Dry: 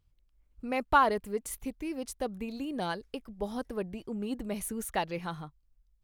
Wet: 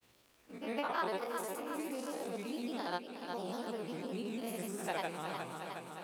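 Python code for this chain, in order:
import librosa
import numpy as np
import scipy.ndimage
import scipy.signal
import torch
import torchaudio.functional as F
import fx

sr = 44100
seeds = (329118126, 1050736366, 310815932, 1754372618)

p1 = fx.spec_blur(x, sr, span_ms=155.0)
p2 = scipy.signal.sosfilt(scipy.signal.butter(2, 310.0, 'highpass', fs=sr, output='sos'), p1)
p3 = fx.level_steps(p2, sr, step_db=19)
p4 = p2 + (p3 * 10.0 ** (-2.5 / 20.0))
p5 = fx.granulator(p4, sr, seeds[0], grain_ms=100.0, per_s=20.0, spray_ms=100.0, spread_st=3)
p6 = fx.doubler(p5, sr, ms=17.0, db=-13)
p7 = p6 + fx.echo_feedback(p6, sr, ms=361, feedback_pct=47, wet_db=-10, dry=0)
y = fx.band_squash(p7, sr, depth_pct=70)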